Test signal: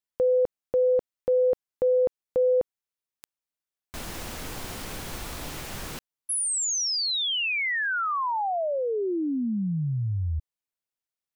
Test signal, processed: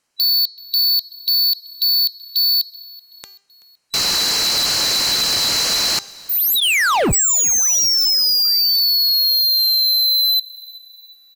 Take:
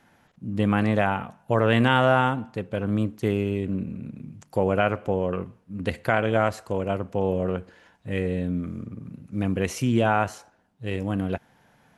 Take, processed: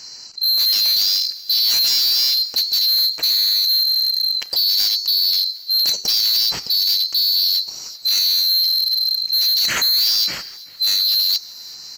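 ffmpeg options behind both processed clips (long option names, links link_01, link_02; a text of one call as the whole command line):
ffmpeg -i in.wav -filter_complex "[0:a]afftfilt=real='real(if(lt(b,736),b+184*(1-2*mod(floor(b/184),2)),b),0)':imag='imag(if(lt(b,736),b+184*(1-2*mod(floor(b/184),2)),b),0)':win_size=2048:overlap=0.75,lowpass=8500,lowshelf=frequency=130:gain=-4,bandreject=frequency=3500:width=6.4,bandreject=frequency=398.8:width_type=h:width=4,bandreject=frequency=797.6:width_type=h:width=4,bandreject=frequency=1196.4:width_type=h:width=4,bandreject=frequency=1595.2:width_type=h:width=4,bandreject=frequency=1994:width_type=h:width=4,bandreject=frequency=2392.8:width_type=h:width=4,bandreject=frequency=2791.6:width_type=h:width=4,bandreject=frequency=3190.4:width_type=h:width=4,bandreject=frequency=3589.2:width_type=h:width=4,bandreject=frequency=3988:width_type=h:width=4,bandreject=frequency=4386.8:width_type=h:width=4,bandreject=frequency=4785.6:width_type=h:width=4,bandreject=frequency=5184.4:width_type=h:width=4,bandreject=frequency=5583.2:width_type=h:width=4,bandreject=frequency=5982:width_type=h:width=4,bandreject=frequency=6380.8:width_type=h:width=4,bandreject=frequency=6779.6:width_type=h:width=4,bandreject=frequency=7178.4:width_type=h:width=4,bandreject=frequency=7577.2:width_type=h:width=4,acompressor=threshold=-32dB:ratio=2:attack=3.2:release=388:knee=6:detection=rms,apsyclip=24dB,volume=15dB,asoftclip=hard,volume=-15dB,asplit=4[link_01][link_02][link_03][link_04];[link_02]adelay=380,afreqshift=-33,volume=-22.5dB[link_05];[link_03]adelay=760,afreqshift=-66,volume=-28.3dB[link_06];[link_04]adelay=1140,afreqshift=-99,volume=-34.2dB[link_07];[link_01][link_05][link_06][link_07]amix=inputs=4:normalize=0" out.wav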